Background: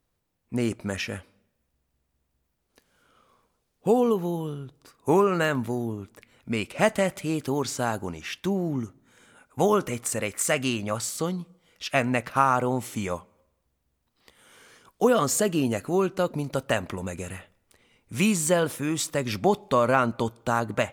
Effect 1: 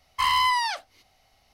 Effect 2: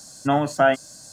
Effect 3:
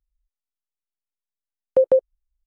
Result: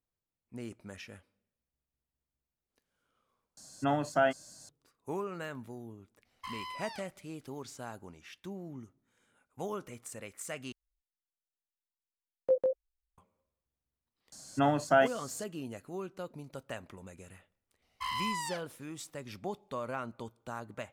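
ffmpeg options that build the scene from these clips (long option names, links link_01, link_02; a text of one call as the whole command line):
ffmpeg -i bed.wav -i cue0.wav -i cue1.wav -i cue2.wav -filter_complex "[2:a]asplit=2[link_01][link_02];[1:a]asplit=2[link_03][link_04];[0:a]volume=-16.5dB[link_05];[link_03]acompressor=threshold=-36dB:ratio=2:attack=86:release=127:knee=1:detection=rms[link_06];[3:a]flanger=delay=16.5:depth=3.2:speed=2.3[link_07];[link_05]asplit=3[link_08][link_09][link_10];[link_08]atrim=end=3.574[link_11];[link_01]atrim=end=1.12,asetpts=PTS-STARTPTS,volume=-9.5dB[link_12];[link_09]atrim=start=4.686:end=10.724[link_13];[link_07]atrim=end=2.46,asetpts=PTS-STARTPTS,volume=-9.5dB[link_14];[link_10]atrim=start=13.176[link_15];[link_06]atrim=end=1.53,asetpts=PTS-STARTPTS,volume=-13.5dB,afade=type=in:duration=0.004:curve=hsin,afade=type=out:start_time=1.526:duration=0.004:curve=hsin,adelay=6250[link_16];[link_02]atrim=end=1.12,asetpts=PTS-STARTPTS,volume=-7dB,afade=type=in:duration=0.004:curve=hsin,afade=type=out:start_time=1.116:duration=0.004:curve=hsin,adelay=14320[link_17];[link_04]atrim=end=1.53,asetpts=PTS-STARTPTS,volume=-13.5dB,afade=type=in:duration=0.004:curve=hsin,afade=type=out:start_time=1.526:duration=0.004:curve=hsin,adelay=17820[link_18];[link_11][link_12]acrossfade=duration=0.004:curve1=hsin:curve2=hsin[link_19];[link_19][link_13]acrossfade=duration=0.004:curve1=hsin:curve2=hsin[link_20];[link_20][link_14]acrossfade=duration=0.004:curve1=hsin:curve2=hsin[link_21];[link_21][link_15]acrossfade=duration=0.004:curve1=hsin:curve2=hsin[link_22];[link_22][link_16][link_17][link_18]amix=inputs=4:normalize=0" out.wav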